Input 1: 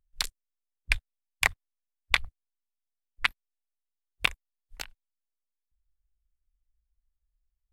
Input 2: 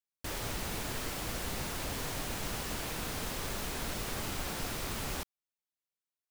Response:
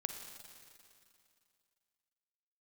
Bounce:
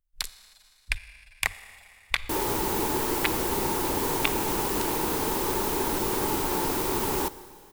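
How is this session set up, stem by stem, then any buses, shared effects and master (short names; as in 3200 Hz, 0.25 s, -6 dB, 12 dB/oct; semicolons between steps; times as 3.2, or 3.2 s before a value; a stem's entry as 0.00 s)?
-7.0 dB, 0.00 s, send -3.5 dB, dry
-1.0 dB, 2.05 s, send -6 dB, high shelf 8900 Hz +5.5 dB; small resonant body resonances 370/880 Hz, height 16 dB, ringing for 20 ms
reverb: on, RT60 2.5 s, pre-delay 39 ms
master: high shelf 9900 Hz +7.5 dB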